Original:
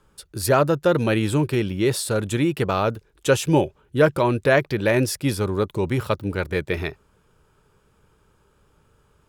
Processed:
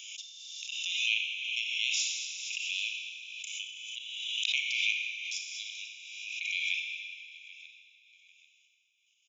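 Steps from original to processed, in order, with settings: brick-wall FIR band-pass 2000–7300 Hz; on a send: feedback echo 0.789 s, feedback 28%, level -18.5 dB; on the sum: step gate "xxx.....x.xx" 192 bpm -60 dB; fixed phaser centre 3000 Hz, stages 8; Schroeder reverb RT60 2.1 s, combs from 28 ms, DRR 0.5 dB; backwards sustainer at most 30 dB/s; gain +4.5 dB

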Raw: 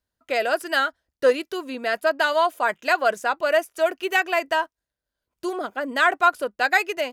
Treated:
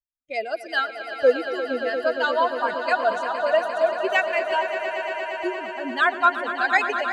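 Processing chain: per-bin expansion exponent 2; air absorption 84 m; swelling echo 0.116 s, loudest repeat 5, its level -12 dB; gain +2.5 dB

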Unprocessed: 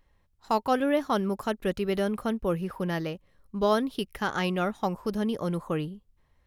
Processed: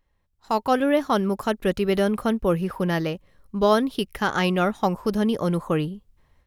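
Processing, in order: AGC gain up to 11.5 dB; gain -5 dB

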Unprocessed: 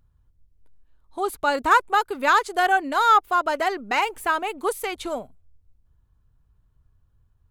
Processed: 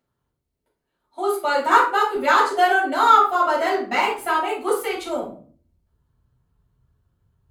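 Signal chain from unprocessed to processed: HPF 270 Hz 12 dB/oct, from 2.15 s 100 Hz; shoebox room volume 330 m³, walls furnished, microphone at 7 m; gain -8.5 dB

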